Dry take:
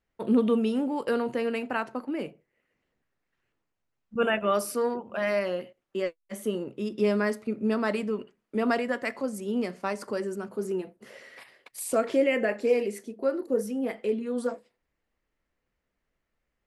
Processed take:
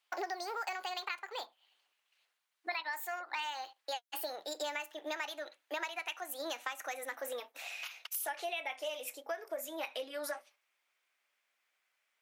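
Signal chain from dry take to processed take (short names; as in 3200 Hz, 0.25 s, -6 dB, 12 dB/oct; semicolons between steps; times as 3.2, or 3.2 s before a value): speed glide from 161% -> 112%; HPF 1200 Hz 12 dB/oct; compressor 8:1, threshold -42 dBFS, peak gain reduction 17.5 dB; gain +6.5 dB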